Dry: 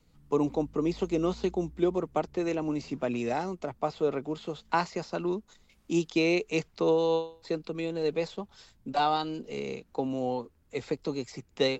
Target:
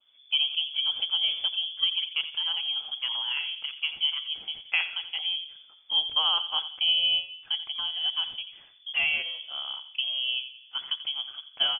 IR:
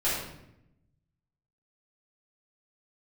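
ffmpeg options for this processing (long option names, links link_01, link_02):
-filter_complex "[0:a]asplit=2[link_01][link_02];[link_02]adelay=87,lowpass=frequency=1700:poles=1,volume=-11dB,asplit=2[link_03][link_04];[link_04]adelay=87,lowpass=frequency=1700:poles=1,volume=0.47,asplit=2[link_05][link_06];[link_06]adelay=87,lowpass=frequency=1700:poles=1,volume=0.47,asplit=2[link_07][link_08];[link_08]adelay=87,lowpass=frequency=1700:poles=1,volume=0.47,asplit=2[link_09][link_10];[link_10]adelay=87,lowpass=frequency=1700:poles=1,volume=0.47[link_11];[link_01][link_03][link_05][link_07][link_09][link_11]amix=inputs=6:normalize=0,asplit=2[link_12][link_13];[1:a]atrim=start_sample=2205,lowpass=2300[link_14];[link_13][link_14]afir=irnorm=-1:irlink=0,volume=-26dB[link_15];[link_12][link_15]amix=inputs=2:normalize=0,lowpass=frequency=3000:width_type=q:width=0.5098,lowpass=frequency=3000:width_type=q:width=0.6013,lowpass=frequency=3000:width_type=q:width=0.9,lowpass=frequency=3000:width_type=q:width=2.563,afreqshift=-3500,adynamicequalizer=threshold=0.00708:dfrequency=2000:dqfactor=2:tfrequency=2000:tqfactor=2:attack=5:release=100:ratio=0.375:range=2:mode=cutabove:tftype=bell"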